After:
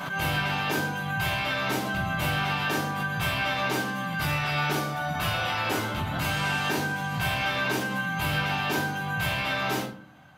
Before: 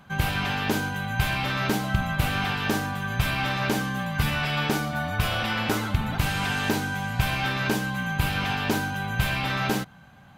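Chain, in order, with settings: high-pass 290 Hz 6 dB/octave; simulated room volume 300 m³, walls furnished, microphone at 5.3 m; swell ahead of each attack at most 37 dB/s; trim -9 dB

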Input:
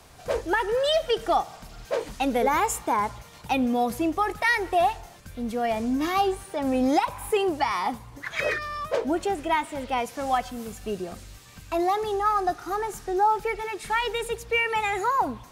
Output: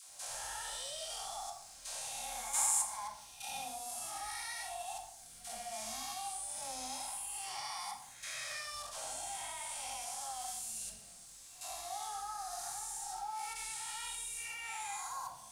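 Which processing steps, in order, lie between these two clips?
spectral blur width 314 ms; pre-emphasis filter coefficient 0.9; reverb removal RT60 0.89 s; FFT filter 160 Hz 0 dB, 310 Hz -22 dB, 480 Hz -14 dB, 690 Hz +9 dB, 1.3 kHz +3 dB, 1.9 kHz 0 dB, 9.2 kHz +13 dB, 14 kHz -7 dB; level held to a coarse grid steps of 12 dB; crackle 590 per s -57 dBFS; phase dispersion lows, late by 91 ms, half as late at 490 Hz; reverberation RT60 0.65 s, pre-delay 4 ms, DRR 1 dB; trim +3.5 dB

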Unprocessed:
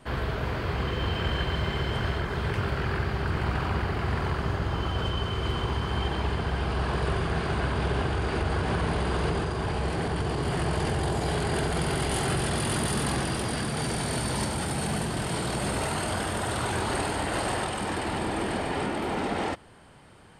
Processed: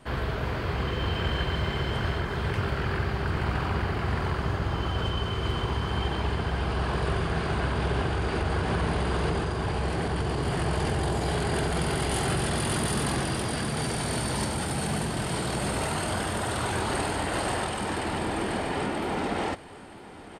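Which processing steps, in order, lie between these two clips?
feedback delay 952 ms, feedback 45%, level -17.5 dB

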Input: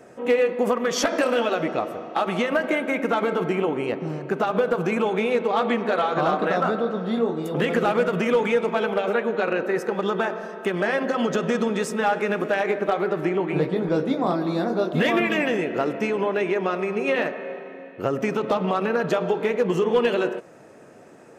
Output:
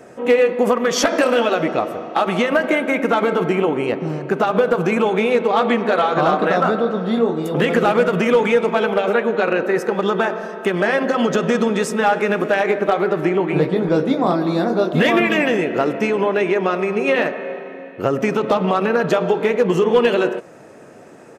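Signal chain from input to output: resampled via 32 kHz; trim +5.5 dB

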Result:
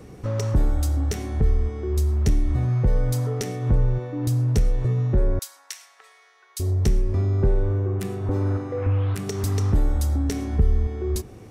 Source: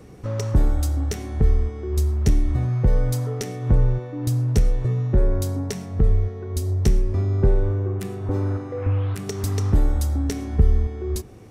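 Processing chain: 5.39–6.60 s: Bessel high-pass 1.7 kHz, order 4; in parallel at +1 dB: peak limiter -19.5 dBFS, peak gain reduction 12.5 dB; on the sum: trim -5 dB

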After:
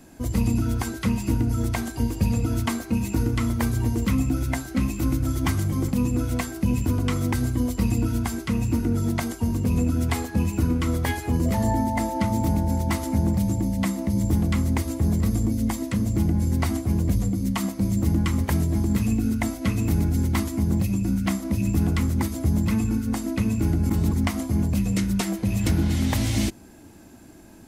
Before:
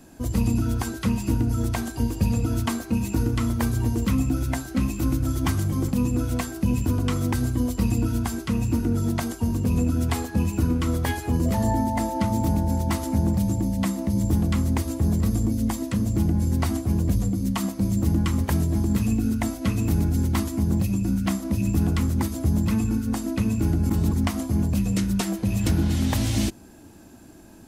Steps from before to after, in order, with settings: peaking EQ 2.1 kHz +5.5 dB 0.21 oct

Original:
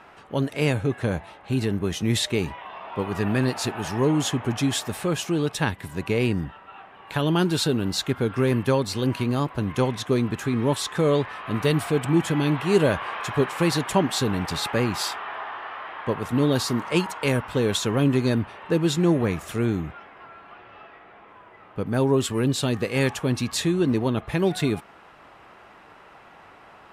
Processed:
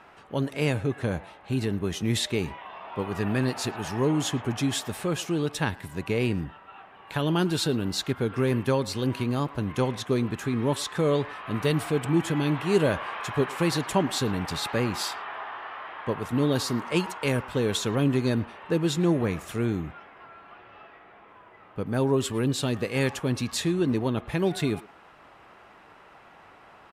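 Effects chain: speakerphone echo 110 ms, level -19 dB; trim -3 dB

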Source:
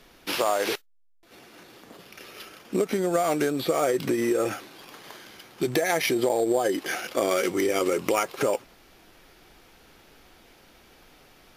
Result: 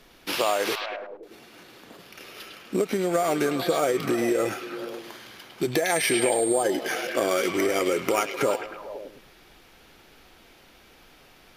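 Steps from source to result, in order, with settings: repeats whose band climbs or falls 104 ms, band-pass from 3.2 kHz, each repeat -0.7 oct, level -2 dB; 5.90–6.62 s: whistle 8.6 kHz -29 dBFS

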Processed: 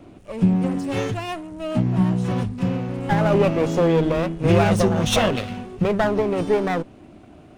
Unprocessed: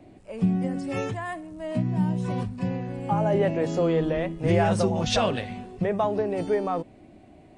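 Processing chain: comb filter that takes the minimum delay 0.31 ms; trim +5.5 dB

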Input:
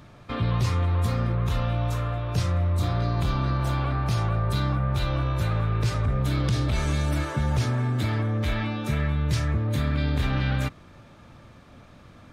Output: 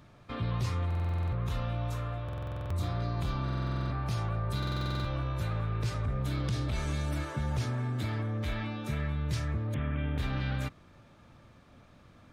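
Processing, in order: 9.74–10.18 s: steep low-pass 3.3 kHz 96 dB/octave; buffer glitch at 0.86/2.24/3.44/4.58 s, samples 2048, times 9; trim -7.5 dB

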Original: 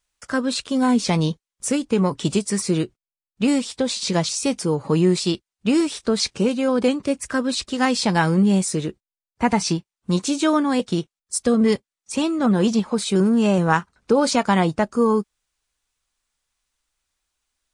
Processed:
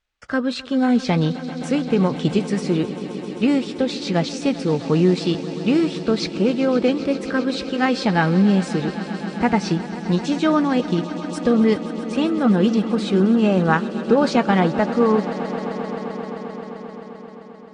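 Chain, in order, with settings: low-pass 3.5 kHz 12 dB/octave; band-stop 1 kHz, Q 9.2; echo with a slow build-up 131 ms, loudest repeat 5, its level -17 dB; trim +1 dB

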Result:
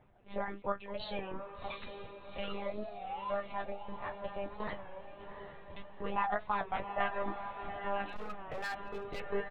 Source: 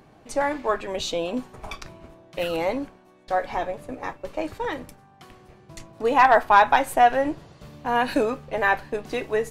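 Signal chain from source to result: coarse spectral quantiser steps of 15 dB; dynamic bell 1.3 kHz, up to +4 dB, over -35 dBFS, Q 2.6; 2.43–3.42 s: painted sound rise 380–1200 Hz -33 dBFS; compression 2:1, threshold -37 dBFS, peak gain reduction 15 dB; gate -44 dBFS, range -7 dB; reverb removal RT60 1.1 s; doubling 14 ms -10 dB; monotone LPC vocoder at 8 kHz 200 Hz; echo that smears into a reverb 745 ms, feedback 49%, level -8 dB; flange 0.28 Hz, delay 7.9 ms, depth 5.3 ms, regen -39%; 8.06–9.20 s: hard clipper -35 dBFS, distortion -16 dB; warped record 33 1/3 rpm, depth 100 cents

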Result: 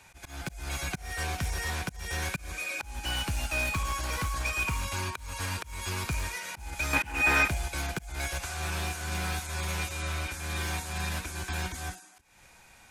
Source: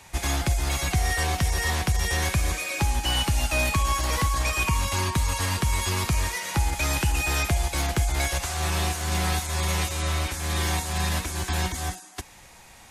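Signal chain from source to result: one-sided wavefolder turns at -18.5 dBFS; 6.93–7.48 s: ten-band graphic EQ 250 Hz +10 dB, 500 Hz +6 dB, 1 kHz +8 dB, 2 kHz +11 dB; slow attack 258 ms; small resonant body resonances 1.5/2.4 kHz, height 10 dB, ringing for 25 ms; trim -7.5 dB

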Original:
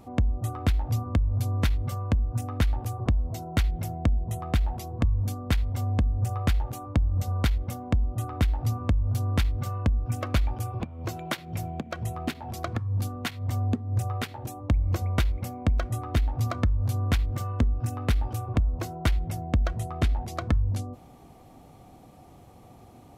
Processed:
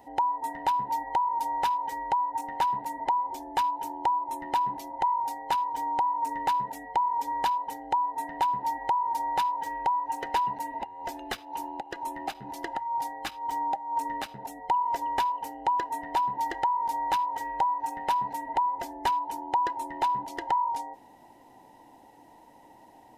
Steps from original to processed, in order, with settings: every band turned upside down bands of 1 kHz; trim -3.5 dB

